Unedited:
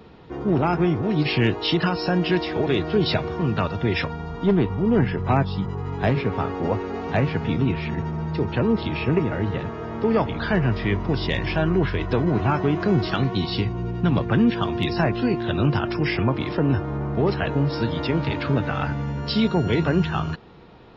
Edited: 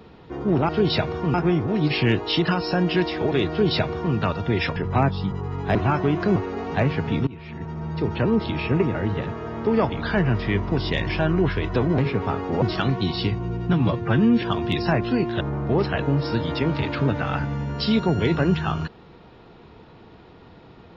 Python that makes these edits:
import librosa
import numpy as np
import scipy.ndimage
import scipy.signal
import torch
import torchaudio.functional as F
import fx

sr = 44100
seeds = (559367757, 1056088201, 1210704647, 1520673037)

y = fx.edit(x, sr, fx.duplicate(start_s=2.85, length_s=0.65, to_s=0.69),
    fx.cut(start_s=4.11, length_s=0.99),
    fx.swap(start_s=6.09, length_s=0.64, other_s=12.35, other_length_s=0.61),
    fx.fade_in_from(start_s=7.64, length_s=0.81, floor_db=-20.5),
    fx.stretch_span(start_s=14.07, length_s=0.46, factor=1.5),
    fx.cut(start_s=15.52, length_s=1.37), tone=tone)